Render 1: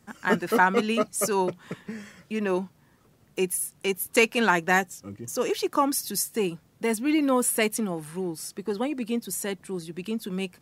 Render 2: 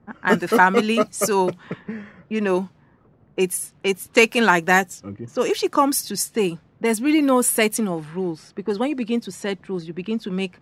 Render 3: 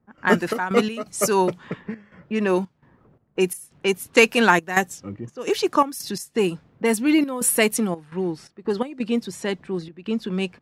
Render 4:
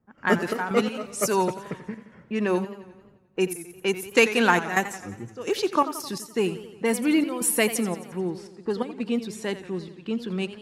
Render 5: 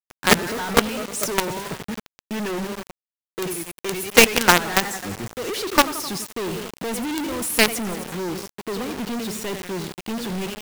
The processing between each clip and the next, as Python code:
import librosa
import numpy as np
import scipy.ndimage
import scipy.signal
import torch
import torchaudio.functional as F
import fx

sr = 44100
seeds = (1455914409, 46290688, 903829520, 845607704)

y1 = fx.env_lowpass(x, sr, base_hz=1100.0, full_db=-22.0)
y1 = F.gain(torch.from_numpy(y1), 5.5).numpy()
y2 = fx.step_gate(y1, sr, bpm=85, pattern='.xx.x.xxxxx.xxx', floor_db=-12.0, edge_ms=4.5)
y3 = fx.echo_warbled(y2, sr, ms=88, feedback_pct=60, rate_hz=2.8, cents=119, wet_db=-13.5)
y3 = F.gain(torch.from_numpy(y3), -3.5).numpy()
y4 = fx.quant_companded(y3, sr, bits=2)
y4 = F.gain(torch.from_numpy(y4), -1.0).numpy()